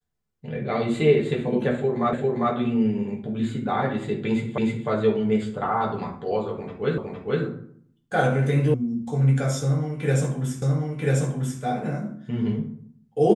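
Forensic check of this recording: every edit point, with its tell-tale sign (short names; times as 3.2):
2.13 repeat of the last 0.4 s
4.58 repeat of the last 0.31 s
6.98 repeat of the last 0.46 s
8.74 sound cut off
10.62 repeat of the last 0.99 s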